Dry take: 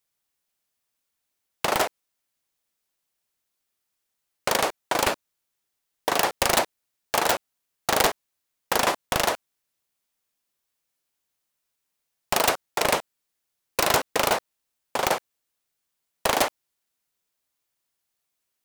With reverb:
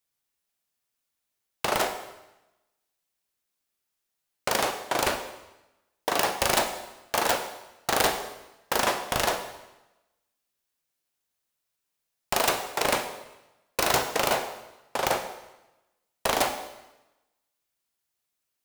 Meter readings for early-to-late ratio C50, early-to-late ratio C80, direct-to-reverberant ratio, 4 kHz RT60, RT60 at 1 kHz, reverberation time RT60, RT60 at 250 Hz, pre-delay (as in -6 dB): 8.5 dB, 10.5 dB, 6.0 dB, 0.95 s, 1.0 s, 0.95 s, 1.0 s, 8 ms